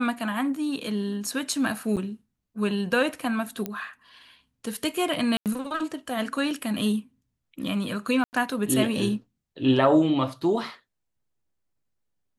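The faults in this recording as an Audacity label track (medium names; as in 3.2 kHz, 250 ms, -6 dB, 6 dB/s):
1.960000	1.970000	dropout 7.8 ms
3.660000	3.660000	pop -15 dBFS
5.370000	5.460000	dropout 88 ms
8.240000	8.330000	dropout 89 ms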